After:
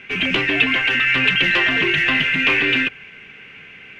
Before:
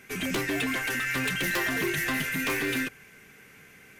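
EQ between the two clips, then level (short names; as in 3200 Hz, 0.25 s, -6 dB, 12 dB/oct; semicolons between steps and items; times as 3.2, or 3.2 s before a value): synth low-pass 2800 Hz, resonance Q 4.2; +6.0 dB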